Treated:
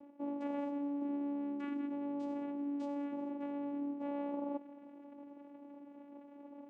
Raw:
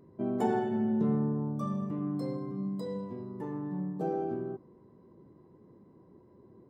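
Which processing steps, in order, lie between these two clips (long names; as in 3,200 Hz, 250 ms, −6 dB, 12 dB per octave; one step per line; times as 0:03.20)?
high-shelf EQ 4,700 Hz +7 dB
reversed playback
downward compressor 6 to 1, threshold −41 dBFS, peak gain reduction 16.5 dB
reversed playback
channel vocoder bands 4, saw 285 Hz
level +5 dB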